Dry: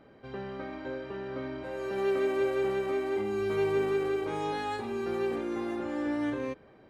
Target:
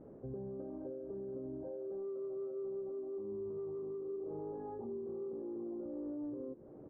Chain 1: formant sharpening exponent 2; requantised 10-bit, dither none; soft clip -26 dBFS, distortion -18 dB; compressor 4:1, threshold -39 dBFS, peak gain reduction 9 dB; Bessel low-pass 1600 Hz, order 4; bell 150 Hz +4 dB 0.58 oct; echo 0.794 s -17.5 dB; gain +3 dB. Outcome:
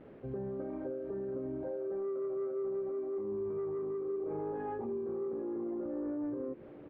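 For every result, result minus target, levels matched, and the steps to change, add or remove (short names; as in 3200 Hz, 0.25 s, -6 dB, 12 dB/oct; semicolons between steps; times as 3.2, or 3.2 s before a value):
2000 Hz band +13.5 dB; compressor: peak gain reduction -4.5 dB
change: Bessel low-pass 700 Hz, order 4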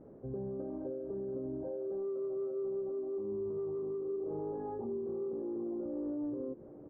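compressor: peak gain reduction -4.5 dB
change: compressor 4:1, threshold -45 dBFS, peak gain reduction 13.5 dB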